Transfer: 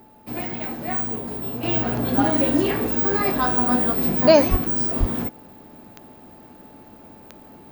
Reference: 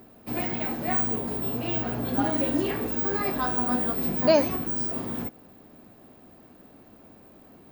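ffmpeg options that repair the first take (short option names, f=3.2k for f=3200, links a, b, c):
-filter_complex "[0:a]adeclick=t=4,bandreject=f=860:w=30,asplit=3[a][b][c];[a]afade=t=out:st=4.5:d=0.02[d];[b]highpass=f=140:w=0.5412,highpass=f=140:w=1.3066,afade=t=in:st=4.5:d=0.02,afade=t=out:st=4.62:d=0.02[e];[c]afade=t=in:st=4.62:d=0.02[f];[d][e][f]amix=inputs=3:normalize=0,asplit=3[g][h][i];[g]afade=t=out:st=4.99:d=0.02[j];[h]highpass=f=140:w=0.5412,highpass=f=140:w=1.3066,afade=t=in:st=4.99:d=0.02,afade=t=out:st=5.11:d=0.02[k];[i]afade=t=in:st=5.11:d=0.02[l];[j][k][l]amix=inputs=3:normalize=0,asetnsamples=n=441:p=0,asendcmd='1.63 volume volume -6dB',volume=0dB"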